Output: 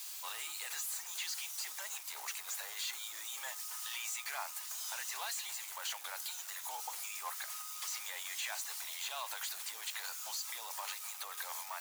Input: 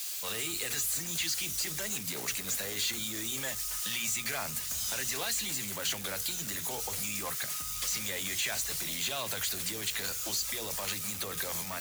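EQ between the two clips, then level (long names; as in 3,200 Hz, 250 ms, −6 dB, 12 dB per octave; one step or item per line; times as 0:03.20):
four-pole ladder high-pass 770 Hz, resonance 55%
+2.0 dB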